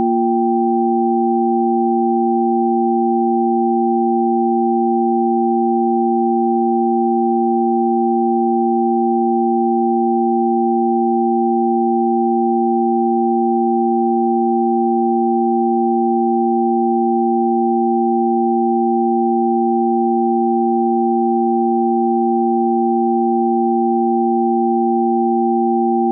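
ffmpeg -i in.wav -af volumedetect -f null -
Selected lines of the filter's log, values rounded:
mean_volume: -15.2 dB
max_volume: -7.4 dB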